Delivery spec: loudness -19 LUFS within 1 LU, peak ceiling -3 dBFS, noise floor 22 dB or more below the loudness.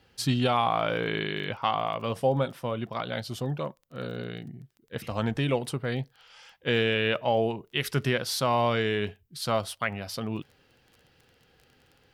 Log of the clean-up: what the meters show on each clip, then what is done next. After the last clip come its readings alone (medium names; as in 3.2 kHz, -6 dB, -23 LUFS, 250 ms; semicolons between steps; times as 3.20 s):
tick rate 19 per s; loudness -29.0 LUFS; peak level -13.5 dBFS; loudness target -19.0 LUFS
-> de-click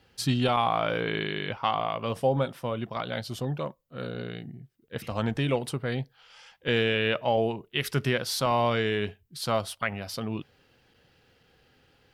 tick rate 0.082 per s; loudness -29.0 LUFS; peak level -13.5 dBFS; loudness target -19.0 LUFS
-> trim +10 dB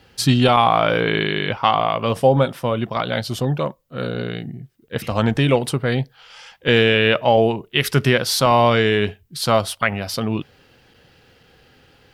loudness -19.0 LUFS; peak level -3.5 dBFS; noise floor -55 dBFS